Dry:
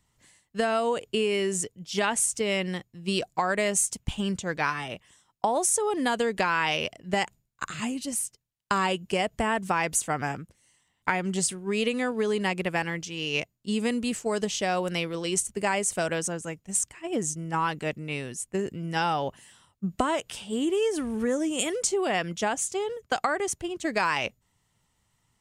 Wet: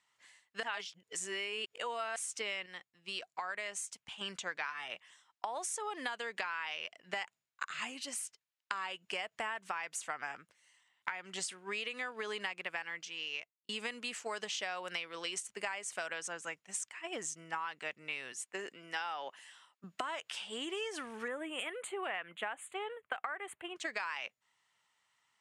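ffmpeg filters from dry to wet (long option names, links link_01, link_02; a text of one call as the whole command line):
ffmpeg -i in.wav -filter_complex "[0:a]asettb=1/sr,asplit=3[link_01][link_02][link_03];[link_01]atrim=end=18.324[link_04];[link_02]atrim=start=18.32:end=19.84,asetpts=PTS-STARTPTS,afade=type=in:duration=0.004:curve=qsin,afade=type=out:start_time=1.516:duration=0.004:curve=qsin,highpass=230[link_05];[link_03]atrim=start=19.836[link_06];[link_04][link_05]acrossfade=duration=0.004:curve1=hsin:curve2=qsin[link_07];[link_07][link_06]acrossfade=duration=0.004:curve1=qsin:curve2=hsin,asettb=1/sr,asplit=3[link_08][link_09][link_10];[link_08]atrim=end=21.284[link_11];[link_09]atrim=start=21.28:end=23.76,asetpts=PTS-STARTPTS,afade=type=in:duration=0.004:curve=qsin,afade=type=out:start_time=2.476:duration=0.004:curve=qsin,asuperstop=centerf=5500:order=4:qfactor=0.79[link_12];[link_10]atrim=start=23.756[link_13];[link_11][link_12]acrossfade=duration=0.004:curve1=hsin:curve2=qsin[link_14];[link_14][link_13]acrossfade=duration=0.004:curve1=qsin:curve2=hsin,asplit=6[link_15][link_16][link_17][link_18][link_19][link_20];[link_15]atrim=end=0.632[link_21];[link_16]atrim=start=0.628:end=2.162,asetpts=PTS-STARTPTS,areverse[link_22];[link_17]atrim=start=2.158:end=2.662[link_23];[link_18]atrim=start=2.658:end=4.212,asetpts=PTS-STARTPTS,volume=-7dB[link_24];[link_19]atrim=start=4.208:end=13.69,asetpts=PTS-STARTPTS,afade=type=out:start_time=8.522:duration=0.96[link_25];[link_20]atrim=start=13.69,asetpts=PTS-STARTPTS,afade=type=in:duration=0.004:curve=hsin[link_26];[link_21][link_22]acrossfade=duration=0.004:curve1=hsin:curve2=hsin[link_27];[link_27][link_23]acrossfade=duration=0.004:curve1=hsin:curve2=hsin[link_28];[link_28][link_24]acrossfade=duration=0.004:curve1=hsin:curve2=hsin[link_29];[link_25][link_26]concat=n=2:v=0:a=1[link_30];[link_29][link_30]acrossfade=duration=0.004:curve1=hsin:curve2=hsin,highpass=1400,aemphasis=mode=reproduction:type=riaa,acompressor=threshold=-40dB:ratio=10,volume=5dB" out.wav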